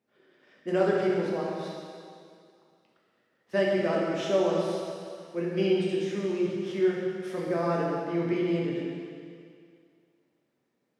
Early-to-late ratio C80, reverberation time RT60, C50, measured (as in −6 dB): 0.5 dB, 2.3 s, −1.0 dB